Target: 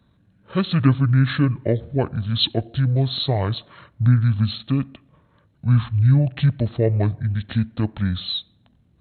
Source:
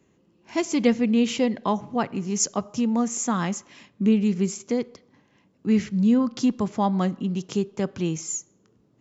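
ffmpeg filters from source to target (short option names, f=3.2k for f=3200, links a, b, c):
-af "asetrate=24750,aresample=44100,atempo=1.7818,volume=4dB"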